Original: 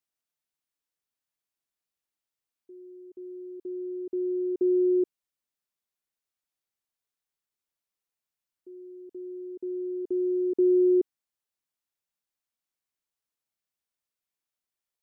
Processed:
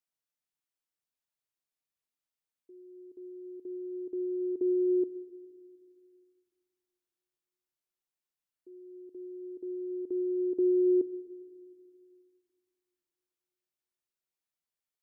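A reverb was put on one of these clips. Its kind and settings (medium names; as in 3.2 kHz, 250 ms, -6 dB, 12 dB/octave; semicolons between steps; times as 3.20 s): simulated room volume 3100 m³, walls mixed, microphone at 0.46 m; trim -4.5 dB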